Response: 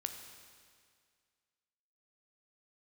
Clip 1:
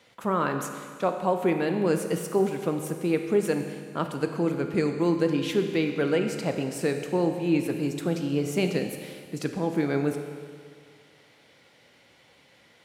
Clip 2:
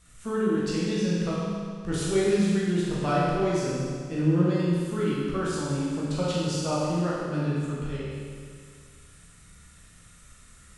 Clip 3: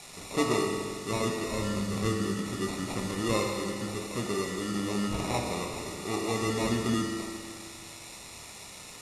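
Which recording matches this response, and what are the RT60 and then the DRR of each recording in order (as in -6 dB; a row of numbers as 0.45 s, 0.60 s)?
1; 2.0 s, 2.0 s, 2.0 s; 5.5 dB, -7.5 dB, 0.0 dB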